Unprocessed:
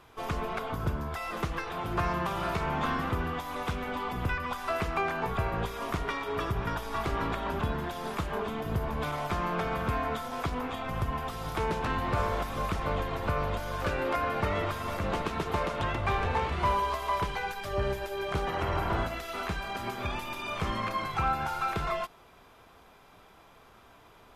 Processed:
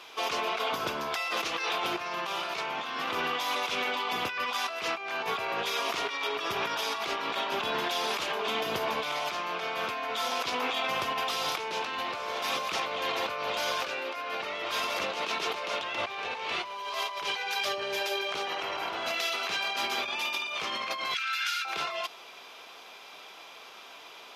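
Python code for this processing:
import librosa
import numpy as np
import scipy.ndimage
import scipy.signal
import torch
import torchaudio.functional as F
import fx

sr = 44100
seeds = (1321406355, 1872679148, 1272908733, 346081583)

y = fx.ellip_highpass(x, sr, hz=1500.0, order=4, stop_db=70, at=(21.14, 21.65))
y = scipy.signal.sosfilt(scipy.signal.butter(2, 430.0, 'highpass', fs=sr, output='sos'), y)
y = fx.band_shelf(y, sr, hz=3800.0, db=9.5, octaves=1.7)
y = fx.over_compress(y, sr, threshold_db=-36.0, ratio=-1.0)
y = F.gain(torch.from_numpy(y), 3.5).numpy()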